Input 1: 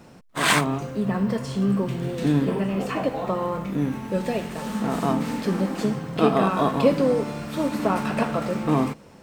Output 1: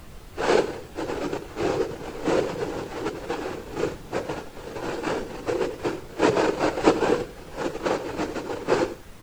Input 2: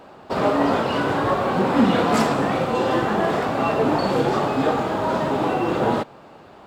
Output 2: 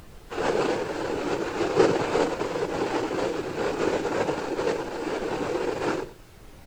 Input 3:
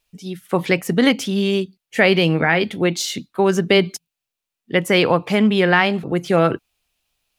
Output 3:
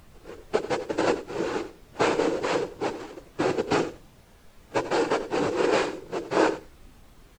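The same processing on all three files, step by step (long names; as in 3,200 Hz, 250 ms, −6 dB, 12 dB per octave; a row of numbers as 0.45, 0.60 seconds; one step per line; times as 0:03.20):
samples sorted by size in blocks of 256 samples
reverb reduction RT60 0.54 s
mains-hum notches 50/100/150/200/250/300/350 Hz
comb filter 2.8 ms, depth 83%
noise that follows the level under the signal 13 dB
cochlear-implant simulation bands 8
pitch vibrato 0.45 Hz 17 cents
background noise pink −36 dBFS
repeating echo 91 ms, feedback 22%, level −10 dB
every bin expanded away from the loudest bin 1.5 to 1
loudness normalisation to −27 LKFS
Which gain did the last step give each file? +1.0, −1.5, −7.0 decibels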